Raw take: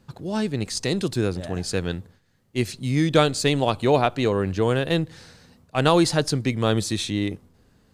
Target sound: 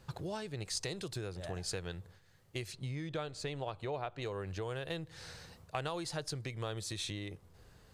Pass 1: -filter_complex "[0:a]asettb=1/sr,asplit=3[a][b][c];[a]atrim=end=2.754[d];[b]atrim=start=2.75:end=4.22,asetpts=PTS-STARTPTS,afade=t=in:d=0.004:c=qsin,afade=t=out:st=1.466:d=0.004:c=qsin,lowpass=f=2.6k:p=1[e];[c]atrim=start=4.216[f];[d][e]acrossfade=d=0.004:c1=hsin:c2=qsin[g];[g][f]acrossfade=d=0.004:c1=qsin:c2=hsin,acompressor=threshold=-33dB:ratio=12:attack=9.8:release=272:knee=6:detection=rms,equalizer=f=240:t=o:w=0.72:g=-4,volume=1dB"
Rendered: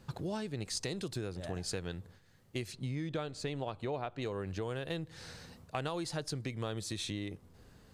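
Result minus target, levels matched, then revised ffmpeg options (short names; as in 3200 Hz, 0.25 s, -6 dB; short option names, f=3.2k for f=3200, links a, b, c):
250 Hz band +3.0 dB
-filter_complex "[0:a]asettb=1/sr,asplit=3[a][b][c];[a]atrim=end=2.754[d];[b]atrim=start=2.75:end=4.22,asetpts=PTS-STARTPTS,afade=t=in:d=0.004:c=qsin,afade=t=out:st=1.466:d=0.004:c=qsin,lowpass=f=2.6k:p=1[e];[c]atrim=start=4.216[f];[d][e]acrossfade=d=0.004:c1=hsin:c2=qsin[g];[g][f]acrossfade=d=0.004:c1=qsin:c2=hsin,acompressor=threshold=-33dB:ratio=12:attack=9.8:release=272:knee=6:detection=rms,equalizer=f=240:t=o:w=0.72:g=-13,volume=1dB"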